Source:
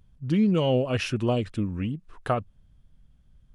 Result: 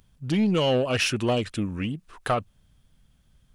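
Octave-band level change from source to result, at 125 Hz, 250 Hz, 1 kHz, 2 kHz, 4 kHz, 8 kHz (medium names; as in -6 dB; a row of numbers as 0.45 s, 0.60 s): -2.0 dB, -0.5 dB, +2.5 dB, +6.0 dB, +6.5 dB, +9.5 dB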